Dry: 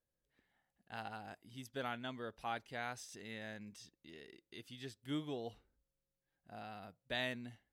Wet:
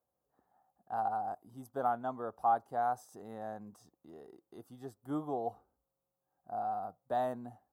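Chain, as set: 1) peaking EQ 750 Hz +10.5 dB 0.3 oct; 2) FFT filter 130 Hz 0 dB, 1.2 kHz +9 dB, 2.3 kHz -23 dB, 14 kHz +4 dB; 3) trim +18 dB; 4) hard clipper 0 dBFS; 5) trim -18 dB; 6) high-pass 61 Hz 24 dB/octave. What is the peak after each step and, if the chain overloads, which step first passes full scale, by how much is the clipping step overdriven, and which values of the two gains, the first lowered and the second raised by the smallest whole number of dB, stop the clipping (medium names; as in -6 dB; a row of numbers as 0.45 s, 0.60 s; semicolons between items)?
-23.5 dBFS, -19.5 dBFS, -1.5 dBFS, -1.5 dBFS, -19.5 dBFS, -19.5 dBFS; nothing clips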